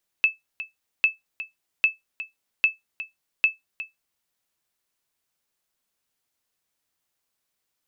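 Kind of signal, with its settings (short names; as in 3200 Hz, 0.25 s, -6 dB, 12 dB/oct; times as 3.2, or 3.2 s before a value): sonar ping 2620 Hz, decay 0.16 s, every 0.80 s, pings 5, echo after 0.36 s, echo -14.5 dB -9.5 dBFS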